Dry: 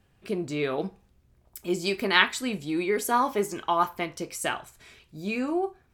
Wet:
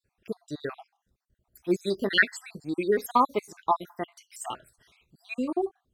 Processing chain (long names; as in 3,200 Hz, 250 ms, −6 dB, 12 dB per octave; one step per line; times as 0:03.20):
time-frequency cells dropped at random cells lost 58%
expander for the loud parts 1.5 to 1, over −43 dBFS
level +4.5 dB